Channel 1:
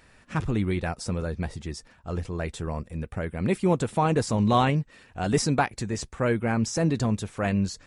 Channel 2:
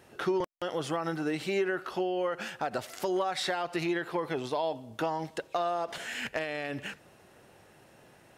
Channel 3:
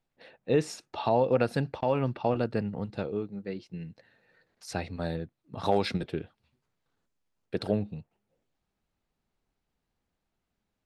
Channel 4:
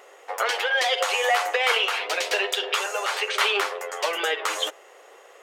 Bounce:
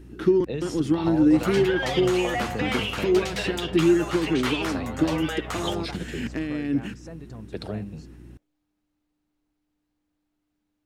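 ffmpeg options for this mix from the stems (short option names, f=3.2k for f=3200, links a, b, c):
-filter_complex "[0:a]highshelf=f=5.1k:g=-12,acompressor=threshold=-29dB:ratio=3,adelay=300,volume=-10dB[a];[1:a]lowshelf=f=430:t=q:w=3:g=11.5,aeval=exprs='val(0)+0.00794*(sin(2*PI*60*n/s)+sin(2*PI*2*60*n/s)/2+sin(2*PI*3*60*n/s)/3+sin(2*PI*4*60*n/s)/4+sin(2*PI*5*60*n/s)/5)':c=same,volume=-2.5dB[b];[2:a]aeval=exprs='val(0)+0.000794*(sin(2*PI*60*n/s)+sin(2*PI*2*60*n/s)/2+sin(2*PI*3*60*n/s)/3+sin(2*PI*4*60*n/s)/4+sin(2*PI*5*60*n/s)/5)':c=same,acrossover=split=170|3000[c][d][e];[d]acompressor=threshold=-30dB:ratio=6[f];[c][f][e]amix=inputs=3:normalize=0,bandreject=f=60:t=h:w=6,bandreject=f=120:t=h:w=6,bandreject=f=180:t=h:w=6,bandreject=f=240:t=h:w=6,volume=0dB[g];[3:a]asoftclip=type=tanh:threshold=-10.5dB,aeval=exprs='val(0)+0.0141*(sin(2*PI*60*n/s)+sin(2*PI*2*60*n/s)/2+sin(2*PI*3*60*n/s)/3+sin(2*PI*4*60*n/s)/4+sin(2*PI*5*60*n/s)/5)':c=same,adelay=1050,volume=-6.5dB[h];[a][b][g][h]amix=inputs=4:normalize=0"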